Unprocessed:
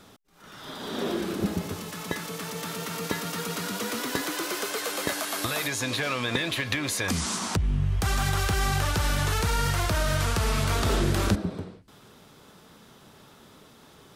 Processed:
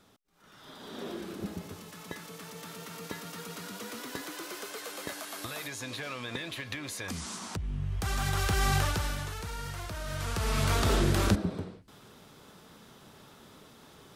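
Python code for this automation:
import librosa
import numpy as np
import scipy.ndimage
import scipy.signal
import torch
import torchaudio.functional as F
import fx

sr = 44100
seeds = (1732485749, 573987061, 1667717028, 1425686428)

y = fx.gain(x, sr, db=fx.line((7.62, -10.0), (8.76, -0.5), (9.34, -13.0), (9.99, -13.0), (10.65, -1.5)))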